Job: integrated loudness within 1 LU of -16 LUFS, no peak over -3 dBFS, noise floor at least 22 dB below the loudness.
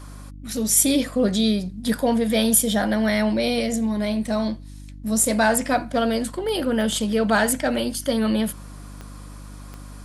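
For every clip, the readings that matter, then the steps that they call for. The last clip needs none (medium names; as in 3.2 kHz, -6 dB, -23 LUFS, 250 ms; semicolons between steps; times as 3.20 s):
clicks found 4; hum 50 Hz; highest harmonic 300 Hz; hum level -37 dBFS; loudness -21.5 LUFS; peak level -4.0 dBFS; loudness target -16.0 LUFS
-> de-click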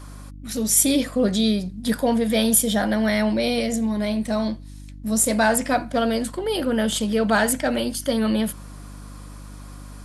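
clicks found 0; hum 50 Hz; highest harmonic 300 Hz; hum level -37 dBFS
-> de-hum 50 Hz, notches 6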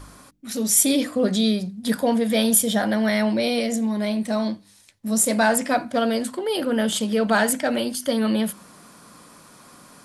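hum not found; loudness -21.5 LUFS; peak level -4.0 dBFS; loudness target -16.0 LUFS
-> trim +5.5 dB; peak limiter -3 dBFS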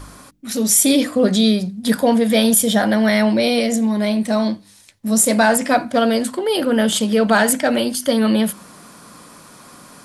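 loudness -16.5 LUFS; peak level -3.0 dBFS; noise floor -48 dBFS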